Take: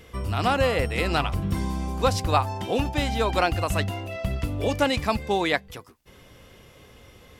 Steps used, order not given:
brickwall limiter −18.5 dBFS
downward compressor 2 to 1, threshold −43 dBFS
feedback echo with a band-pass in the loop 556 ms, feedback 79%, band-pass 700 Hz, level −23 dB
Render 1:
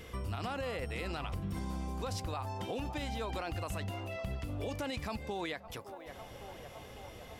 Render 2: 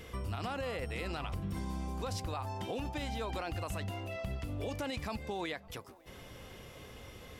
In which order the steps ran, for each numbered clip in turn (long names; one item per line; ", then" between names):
feedback echo with a band-pass in the loop, then brickwall limiter, then downward compressor
brickwall limiter, then downward compressor, then feedback echo with a band-pass in the loop